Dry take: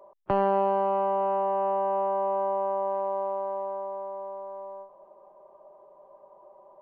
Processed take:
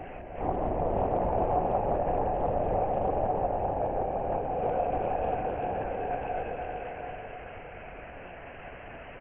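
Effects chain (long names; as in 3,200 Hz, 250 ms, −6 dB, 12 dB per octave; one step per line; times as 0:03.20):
spike at every zero crossing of −32 dBFS
comb filter 4.2 ms, depth 59%
brickwall limiter −27 dBFS, peak gain reduction 12 dB
multi-voice chorus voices 6, 0.45 Hz, delay 21 ms, depth 3 ms
linear-prediction vocoder at 8 kHz whisper
backwards echo 352 ms −12.5 dB
on a send at −1 dB: convolution reverb RT60 3.9 s, pre-delay 107 ms
on the sum: wrong playback speed 45 rpm record played at 33 rpm
highs frequency-modulated by the lows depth 0.38 ms
level +6.5 dB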